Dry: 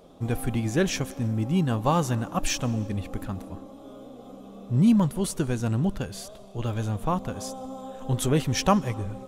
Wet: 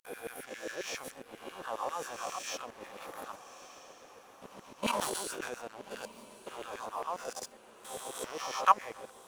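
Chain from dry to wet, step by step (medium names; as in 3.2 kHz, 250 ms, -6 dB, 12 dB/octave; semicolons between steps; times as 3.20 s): reverse spectral sustain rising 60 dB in 1.37 s; level held to a coarse grid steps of 16 dB; LFO high-pass saw down 7.4 Hz 400–2100 Hz; crossover distortion -47 dBFS; echo that smears into a reverb 1246 ms, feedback 43%, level -12.5 dB; 4.83–5.52 s: decay stretcher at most 23 dB/s; trim -4.5 dB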